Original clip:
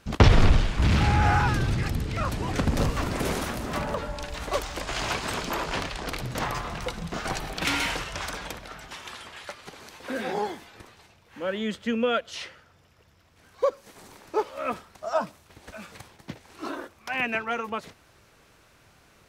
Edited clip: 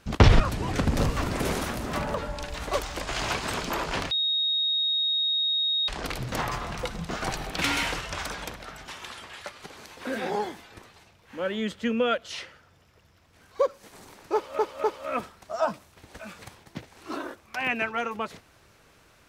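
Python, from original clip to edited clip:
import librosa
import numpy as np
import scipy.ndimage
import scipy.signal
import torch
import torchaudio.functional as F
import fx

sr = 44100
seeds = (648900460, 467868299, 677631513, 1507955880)

y = fx.edit(x, sr, fx.cut(start_s=0.4, length_s=1.8),
    fx.insert_tone(at_s=5.91, length_s=1.77, hz=3750.0, db=-22.5),
    fx.repeat(start_s=14.37, length_s=0.25, count=3), tone=tone)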